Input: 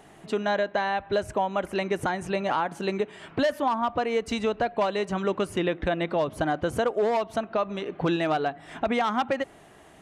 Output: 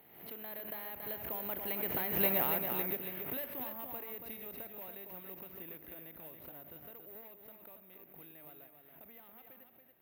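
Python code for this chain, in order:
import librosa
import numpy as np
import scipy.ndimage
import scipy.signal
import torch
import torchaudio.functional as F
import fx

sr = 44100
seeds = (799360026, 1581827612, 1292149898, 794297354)

p1 = fx.bin_compress(x, sr, power=0.6)
p2 = fx.doppler_pass(p1, sr, speed_mps=15, closest_m=2.2, pass_at_s=2.29)
p3 = scipy.signal.sosfilt(scipy.signal.butter(2, 54.0, 'highpass', fs=sr, output='sos'), p2)
p4 = fx.high_shelf_res(p3, sr, hz=1700.0, db=6.5, q=1.5)
p5 = fx.rider(p4, sr, range_db=3, speed_s=0.5)
p6 = fx.spacing_loss(p5, sr, db_at_10k=22)
p7 = p6 + fx.echo_single(p6, sr, ms=280, db=-6.5, dry=0)
p8 = (np.kron(scipy.signal.resample_poly(p7, 1, 3), np.eye(3)[0]) * 3)[:len(p7)]
p9 = fx.pre_swell(p8, sr, db_per_s=72.0)
y = F.gain(torch.from_numpy(p9), -7.5).numpy()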